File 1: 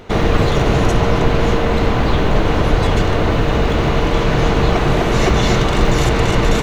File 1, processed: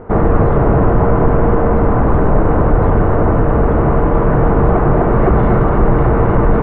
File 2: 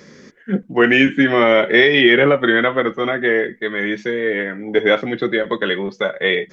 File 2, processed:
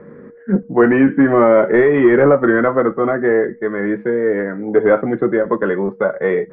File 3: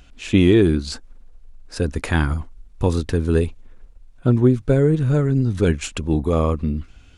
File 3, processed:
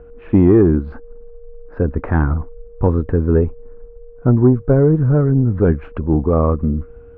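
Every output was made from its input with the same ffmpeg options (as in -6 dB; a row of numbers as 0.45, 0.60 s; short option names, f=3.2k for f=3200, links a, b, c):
-af "acontrast=43,aeval=exprs='val(0)+0.0112*sin(2*PI*470*n/s)':c=same,lowpass=f=1.4k:w=0.5412,lowpass=f=1.4k:w=1.3066,volume=-1dB"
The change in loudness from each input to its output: +2.5, +1.0, +3.5 LU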